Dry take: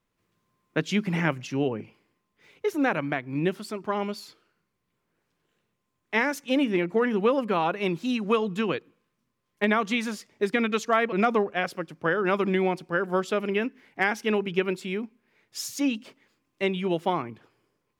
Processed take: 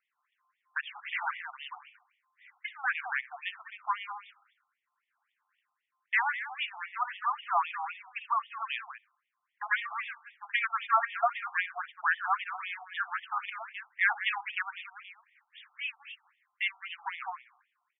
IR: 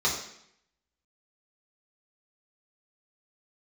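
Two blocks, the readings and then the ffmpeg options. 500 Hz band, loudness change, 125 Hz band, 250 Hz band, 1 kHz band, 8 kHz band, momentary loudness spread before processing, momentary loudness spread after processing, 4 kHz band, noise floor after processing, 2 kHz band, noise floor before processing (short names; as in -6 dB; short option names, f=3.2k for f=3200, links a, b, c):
-21.0 dB, -6.0 dB, under -40 dB, under -40 dB, -2.0 dB, under -35 dB, 9 LU, 16 LU, -5.0 dB, -84 dBFS, -1.0 dB, -78 dBFS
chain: -filter_complex "[0:a]volume=17dB,asoftclip=hard,volume=-17dB,aecho=1:1:62|197:0.133|0.251,asplit=2[a][b];[1:a]atrim=start_sample=2205,adelay=63[c];[b][c]afir=irnorm=-1:irlink=0,volume=-33.5dB[d];[a][d]amix=inputs=2:normalize=0,afftfilt=real='re*between(b*sr/1024,960*pow(2600/960,0.5+0.5*sin(2*PI*3.8*pts/sr))/1.41,960*pow(2600/960,0.5+0.5*sin(2*PI*3.8*pts/sr))*1.41)':imag='im*between(b*sr/1024,960*pow(2600/960,0.5+0.5*sin(2*PI*3.8*pts/sr))/1.41,960*pow(2600/960,0.5+0.5*sin(2*PI*3.8*pts/sr))*1.41)':win_size=1024:overlap=0.75,volume=3dB"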